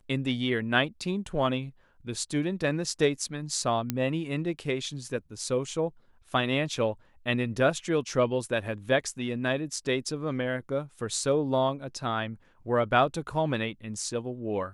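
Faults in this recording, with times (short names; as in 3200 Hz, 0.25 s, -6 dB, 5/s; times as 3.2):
3.9 pop -12 dBFS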